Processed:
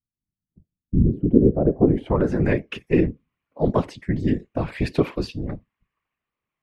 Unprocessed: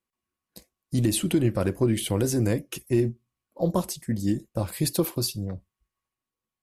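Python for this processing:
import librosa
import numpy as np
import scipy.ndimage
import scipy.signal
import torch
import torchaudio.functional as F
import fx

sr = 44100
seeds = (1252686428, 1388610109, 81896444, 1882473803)

y = fx.filter_sweep_lowpass(x, sr, from_hz=110.0, to_hz=2300.0, start_s=0.78, end_s=2.55, q=2.0)
y = fx.whisperise(y, sr, seeds[0])
y = y * 10.0 ** (3.5 / 20.0)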